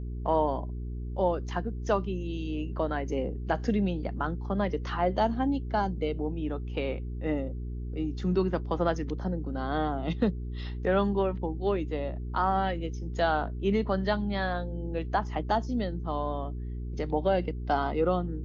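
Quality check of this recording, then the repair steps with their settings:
hum 60 Hz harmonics 7 -35 dBFS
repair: de-hum 60 Hz, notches 7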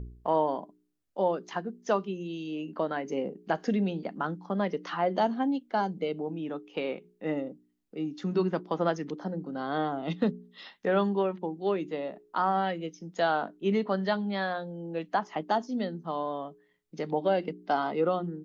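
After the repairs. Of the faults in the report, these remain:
none

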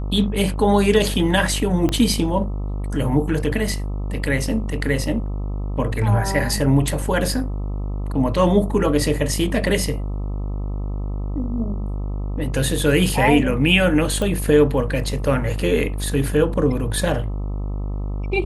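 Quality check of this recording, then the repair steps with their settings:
buzz 50 Hz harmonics 26 -25 dBFS
1.89 pop -9 dBFS
14.22 pop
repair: de-click; de-hum 50 Hz, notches 26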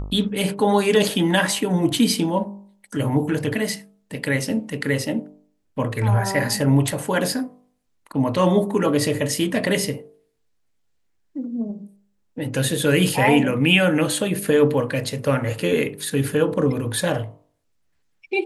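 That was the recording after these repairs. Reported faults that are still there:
1.89 pop

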